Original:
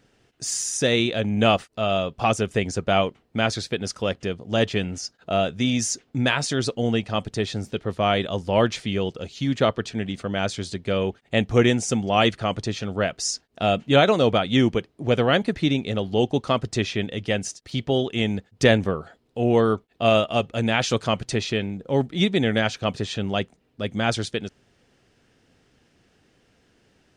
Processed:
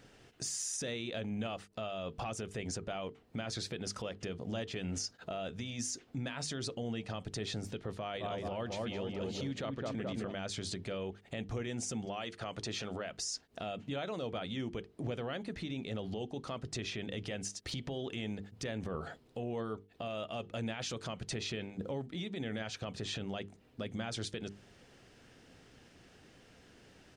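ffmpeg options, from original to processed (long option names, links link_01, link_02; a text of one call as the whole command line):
ffmpeg -i in.wav -filter_complex "[0:a]asplit=3[link_01][link_02][link_03];[link_01]afade=type=out:start_time=8.14:duration=0.02[link_04];[link_02]asplit=2[link_05][link_06];[link_06]adelay=213,lowpass=frequency=1300:poles=1,volume=-4dB,asplit=2[link_07][link_08];[link_08]adelay=213,lowpass=frequency=1300:poles=1,volume=0.52,asplit=2[link_09][link_10];[link_10]adelay=213,lowpass=frequency=1300:poles=1,volume=0.52,asplit=2[link_11][link_12];[link_12]adelay=213,lowpass=frequency=1300:poles=1,volume=0.52,asplit=2[link_13][link_14];[link_14]adelay=213,lowpass=frequency=1300:poles=1,volume=0.52,asplit=2[link_15][link_16];[link_16]adelay=213,lowpass=frequency=1300:poles=1,volume=0.52,asplit=2[link_17][link_18];[link_18]adelay=213,lowpass=frequency=1300:poles=1,volume=0.52[link_19];[link_05][link_07][link_09][link_11][link_13][link_15][link_17][link_19]amix=inputs=8:normalize=0,afade=type=in:start_time=8.14:duration=0.02,afade=type=out:start_time=10.31:duration=0.02[link_20];[link_03]afade=type=in:start_time=10.31:duration=0.02[link_21];[link_04][link_20][link_21]amix=inputs=3:normalize=0,asettb=1/sr,asplit=3[link_22][link_23][link_24];[link_22]atrim=end=12.054[link_25];[link_23]atrim=start=12.05:end=13.1,asetpts=PTS-STARTPTS,afade=type=in:duration=0.004:curve=qsin,afade=type=out:start_time=1.046:duration=0.004:curve=qsin,lowshelf=frequency=230:gain=-8[link_26];[link_24]atrim=start=13.096[link_27];[link_25][link_26]acrossfade=duration=0.004:curve1=hsin:curve2=qsin[link_28];[link_28][link_27]acrossfade=duration=0.004:curve1=qsin:curve2=hsin,asettb=1/sr,asplit=3[link_29][link_30][link_31];[link_29]atrim=end=17.484[link_32];[link_30]atrim=start=17.48:end=18.95,asetpts=PTS-STARTPTS,afade=type=in:duration=0.004:curve=qsin,afade=type=out:start_time=1.466:duration=0.004:curve=qsin,acompressor=threshold=-36dB:ratio=6:attack=3.2:release=140:knee=1:detection=peak[link_33];[link_31]atrim=start=18.946[link_34];[link_32][link_33]acrossfade=duration=0.004:curve1=hsin:curve2=qsin[link_35];[link_35][link_34]acrossfade=duration=0.004:curve1=qsin:curve2=hsin,acompressor=threshold=-32dB:ratio=12,alimiter=level_in=8dB:limit=-24dB:level=0:latency=1:release=38,volume=-8dB,bandreject=frequency=50:width_type=h:width=6,bandreject=frequency=100:width_type=h:width=6,bandreject=frequency=150:width_type=h:width=6,bandreject=frequency=200:width_type=h:width=6,bandreject=frequency=250:width_type=h:width=6,bandreject=frequency=300:width_type=h:width=6,bandreject=frequency=350:width_type=h:width=6,bandreject=frequency=400:width_type=h:width=6,bandreject=frequency=450:width_type=h:width=6,volume=2.5dB" out.wav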